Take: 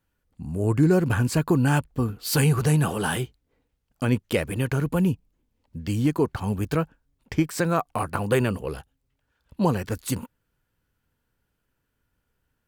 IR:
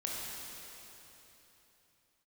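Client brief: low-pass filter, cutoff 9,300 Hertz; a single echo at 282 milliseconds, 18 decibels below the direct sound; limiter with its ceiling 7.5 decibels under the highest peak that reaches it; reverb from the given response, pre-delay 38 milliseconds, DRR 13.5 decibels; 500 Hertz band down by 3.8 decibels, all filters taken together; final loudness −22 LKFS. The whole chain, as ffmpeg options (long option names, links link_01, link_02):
-filter_complex "[0:a]lowpass=9300,equalizer=frequency=500:width_type=o:gain=-5,alimiter=limit=-17dB:level=0:latency=1,aecho=1:1:282:0.126,asplit=2[link_01][link_02];[1:a]atrim=start_sample=2205,adelay=38[link_03];[link_02][link_03]afir=irnorm=-1:irlink=0,volume=-17dB[link_04];[link_01][link_04]amix=inputs=2:normalize=0,volume=6dB"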